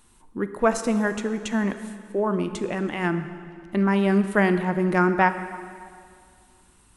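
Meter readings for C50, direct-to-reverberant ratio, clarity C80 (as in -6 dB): 10.0 dB, 9.5 dB, 11.0 dB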